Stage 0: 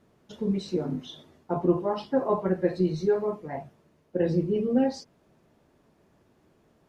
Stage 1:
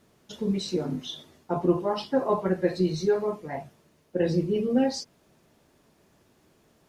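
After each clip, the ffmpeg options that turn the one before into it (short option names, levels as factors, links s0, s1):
-af "highshelf=f=2600:g=10.5"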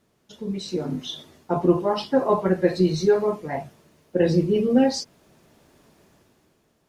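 -af "dynaudnorm=f=150:g=11:m=3.98,volume=0.596"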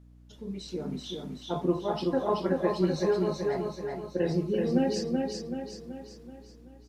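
-filter_complex "[0:a]aeval=exprs='val(0)+0.00631*(sin(2*PI*60*n/s)+sin(2*PI*2*60*n/s)/2+sin(2*PI*3*60*n/s)/3+sin(2*PI*4*60*n/s)/4+sin(2*PI*5*60*n/s)/5)':c=same,asplit=2[s0][s1];[s1]aecho=0:1:380|760|1140|1520|1900|2280:0.668|0.327|0.16|0.0786|0.0385|0.0189[s2];[s0][s2]amix=inputs=2:normalize=0,volume=0.376"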